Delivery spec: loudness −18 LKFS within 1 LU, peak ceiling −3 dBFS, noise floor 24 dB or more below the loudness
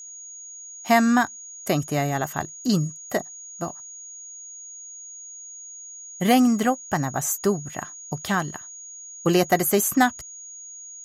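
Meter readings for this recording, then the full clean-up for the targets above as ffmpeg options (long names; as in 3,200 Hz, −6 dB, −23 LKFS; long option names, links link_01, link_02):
interfering tone 6,700 Hz; level of the tone −38 dBFS; integrated loudness −23.5 LKFS; sample peak −6.0 dBFS; target loudness −18.0 LKFS
→ -af "bandreject=frequency=6700:width=30"
-af "volume=5.5dB,alimiter=limit=-3dB:level=0:latency=1"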